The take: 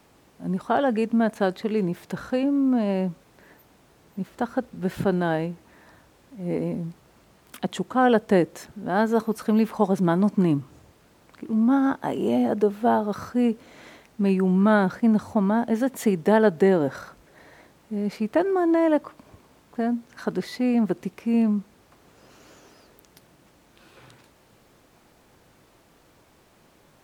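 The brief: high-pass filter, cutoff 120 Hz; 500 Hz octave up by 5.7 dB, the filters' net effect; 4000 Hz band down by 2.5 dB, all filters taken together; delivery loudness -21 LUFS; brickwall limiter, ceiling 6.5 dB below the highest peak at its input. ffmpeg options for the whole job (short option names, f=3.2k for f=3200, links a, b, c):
-af "highpass=120,equalizer=f=500:t=o:g=7.5,equalizer=f=4k:t=o:g=-3.5,volume=1dB,alimiter=limit=-8.5dB:level=0:latency=1"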